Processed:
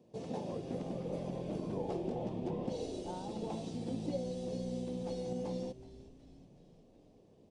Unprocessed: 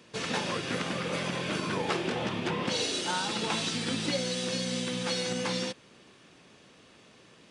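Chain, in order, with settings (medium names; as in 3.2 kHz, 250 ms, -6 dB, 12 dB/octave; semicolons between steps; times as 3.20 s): FFT filter 740 Hz 0 dB, 1.4 kHz -25 dB, 5.7 kHz -16 dB; frequency-shifting echo 371 ms, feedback 59%, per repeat -120 Hz, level -16 dB; trim -5 dB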